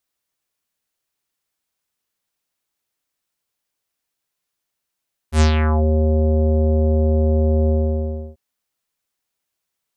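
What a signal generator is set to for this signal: synth note square D#2 24 dB/oct, low-pass 550 Hz, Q 2.4, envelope 4.5 oct, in 0.51 s, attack 85 ms, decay 0.11 s, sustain -5.5 dB, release 0.67 s, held 2.37 s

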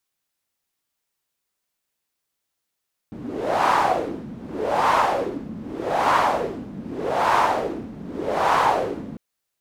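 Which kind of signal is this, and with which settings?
wind-like swept noise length 6.05 s, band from 210 Hz, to 1000 Hz, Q 3.2, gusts 5, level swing 17 dB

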